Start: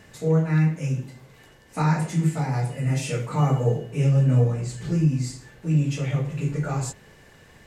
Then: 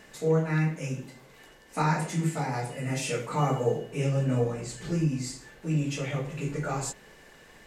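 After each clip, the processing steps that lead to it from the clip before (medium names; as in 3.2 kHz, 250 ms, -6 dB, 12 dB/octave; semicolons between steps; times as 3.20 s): peaking EQ 99 Hz -14.5 dB 1.2 oct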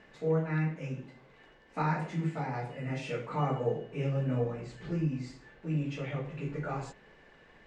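low-pass 3 kHz 12 dB/octave; trim -4.5 dB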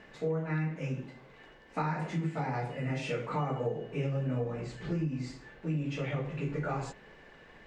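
compression 6:1, threshold -32 dBFS, peak gain reduction 8.5 dB; trim +3.5 dB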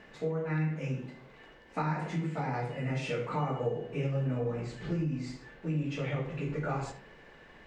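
reverberation RT60 0.45 s, pre-delay 50 ms, DRR 10.5 dB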